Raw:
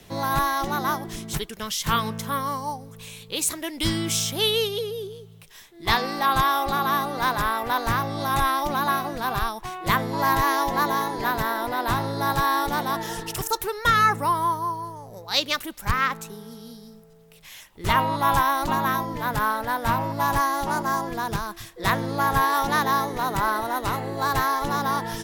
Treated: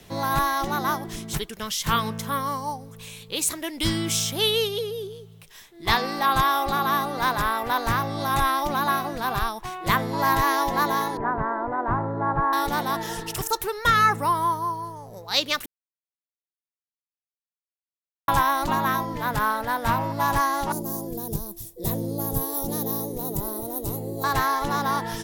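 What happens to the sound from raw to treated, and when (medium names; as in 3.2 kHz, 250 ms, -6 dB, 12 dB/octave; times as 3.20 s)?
11.17–12.53 s: low-pass 1.5 kHz 24 dB/octave
15.66–18.28 s: mute
20.72–24.24 s: FFT filter 500 Hz 0 dB, 1.5 kHz -27 dB, 14 kHz +11 dB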